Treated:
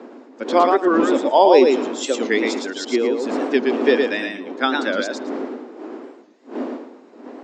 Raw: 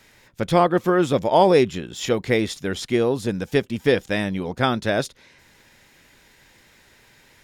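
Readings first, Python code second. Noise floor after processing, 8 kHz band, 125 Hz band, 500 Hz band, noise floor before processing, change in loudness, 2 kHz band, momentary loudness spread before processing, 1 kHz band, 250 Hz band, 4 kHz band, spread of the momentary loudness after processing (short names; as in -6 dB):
-46 dBFS, +2.0 dB, under -15 dB, +3.0 dB, -55 dBFS, +2.5 dB, +3.0 dB, 10 LU, +3.5 dB, +3.0 dB, +2.0 dB, 20 LU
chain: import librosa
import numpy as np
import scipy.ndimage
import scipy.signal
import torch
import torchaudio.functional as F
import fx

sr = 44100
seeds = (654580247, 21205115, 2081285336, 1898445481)

y = fx.bin_expand(x, sr, power=1.5)
y = fx.dmg_wind(y, sr, seeds[0], corner_hz=310.0, level_db=-29.0)
y = scipy.signal.sosfilt(scipy.signal.cheby1(5, 1.0, [250.0, 7600.0], 'bandpass', fs=sr, output='sos'), y)
y = fx.echo_feedback(y, sr, ms=113, feedback_pct=18, wet_db=-4)
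y = fx.record_warp(y, sr, rpm=45.0, depth_cents=160.0)
y = y * 10.0 ** (4.5 / 20.0)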